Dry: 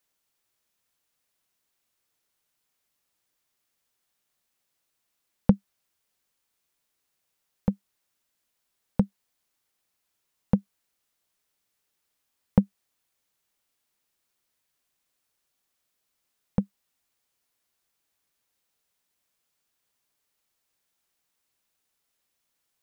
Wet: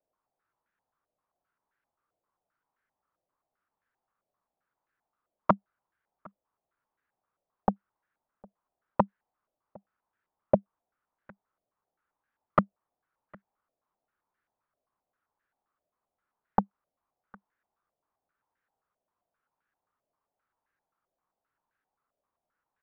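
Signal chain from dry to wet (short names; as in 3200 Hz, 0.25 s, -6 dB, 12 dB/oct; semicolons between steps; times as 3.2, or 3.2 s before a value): wrapped overs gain 12 dB; outdoor echo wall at 130 m, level -26 dB; stepped low-pass 7.6 Hz 640–1600 Hz; gain -3.5 dB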